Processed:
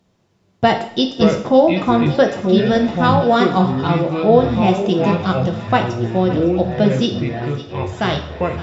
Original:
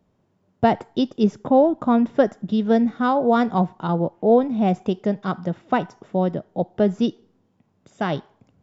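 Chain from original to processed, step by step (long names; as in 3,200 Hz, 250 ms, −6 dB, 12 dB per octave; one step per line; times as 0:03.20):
parametric band 4,800 Hz +10.5 dB 2.5 octaves
delay with pitch and tempo change per echo 311 ms, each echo −6 semitones, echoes 3, each echo −6 dB
feedback echo with a high-pass in the loop 559 ms, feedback 80%, high-pass 720 Hz, level −15 dB
on a send at −3 dB: convolution reverb, pre-delay 3 ms
on the sum: level +1.5 dB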